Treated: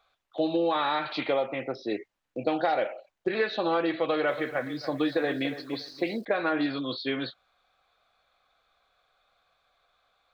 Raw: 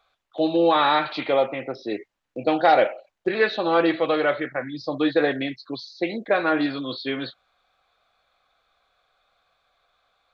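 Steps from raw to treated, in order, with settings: compression 10:1, threshold -20 dBFS, peak gain reduction 8.5 dB; 3.99–6.25 s: bit-crushed delay 285 ms, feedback 35%, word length 8-bit, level -12 dB; trim -2 dB

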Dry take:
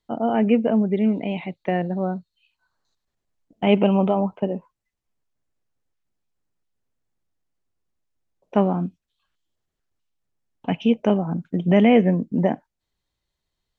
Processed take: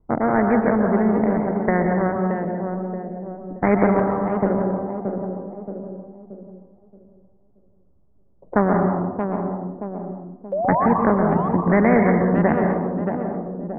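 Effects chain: local Wiener filter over 25 samples; steep low-pass 2 kHz 96 dB/octave; bass shelf 340 Hz +9 dB; 3.99–4.42 s: compression, threshold -22 dBFS, peak gain reduction 10.5 dB; 10.52–10.86 s: painted sound rise 540–1200 Hz -19 dBFS; on a send: tape echo 626 ms, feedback 31%, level -10 dB, low-pass 1.4 kHz; on the sum: plate-style reverb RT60 0.89 s, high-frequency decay 0.45×, pre-delay 110 ms, DRR 5 dB; spectrum-flattening compressor 2:1; trim -2.5 dB

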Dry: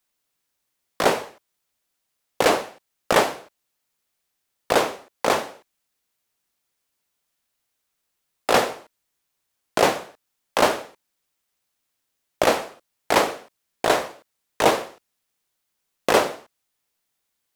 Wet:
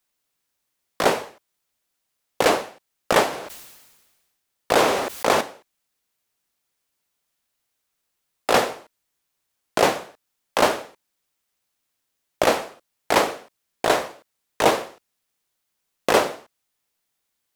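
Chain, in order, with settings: 3.28–5.41 s: decay stretcher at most 43 dB/s

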